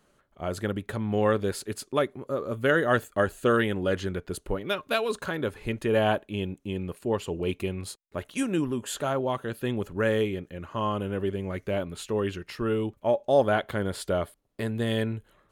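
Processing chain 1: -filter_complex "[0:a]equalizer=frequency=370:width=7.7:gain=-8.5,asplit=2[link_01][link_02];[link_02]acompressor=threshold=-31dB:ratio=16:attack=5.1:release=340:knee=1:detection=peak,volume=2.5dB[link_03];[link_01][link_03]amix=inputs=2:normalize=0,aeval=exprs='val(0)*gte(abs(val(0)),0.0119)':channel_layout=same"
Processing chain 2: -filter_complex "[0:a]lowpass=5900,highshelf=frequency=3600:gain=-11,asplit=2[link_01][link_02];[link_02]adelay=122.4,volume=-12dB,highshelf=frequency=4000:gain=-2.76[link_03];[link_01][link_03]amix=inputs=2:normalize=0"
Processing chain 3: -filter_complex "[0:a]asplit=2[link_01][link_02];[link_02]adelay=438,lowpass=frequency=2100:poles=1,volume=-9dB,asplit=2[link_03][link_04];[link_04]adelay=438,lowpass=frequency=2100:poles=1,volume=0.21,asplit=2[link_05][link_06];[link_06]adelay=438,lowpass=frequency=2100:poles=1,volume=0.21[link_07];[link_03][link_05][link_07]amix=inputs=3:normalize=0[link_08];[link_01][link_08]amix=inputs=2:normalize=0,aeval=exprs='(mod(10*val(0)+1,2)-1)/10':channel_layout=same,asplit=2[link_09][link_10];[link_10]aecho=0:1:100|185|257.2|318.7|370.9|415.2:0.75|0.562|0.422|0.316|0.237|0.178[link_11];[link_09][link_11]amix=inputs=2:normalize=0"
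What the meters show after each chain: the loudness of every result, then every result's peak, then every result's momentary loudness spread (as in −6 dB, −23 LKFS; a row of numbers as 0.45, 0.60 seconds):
−26.0, −28.5, −25.0 LKFS; −7.0, −9.5, −12.0 dBFS; 7, 10, 6 LU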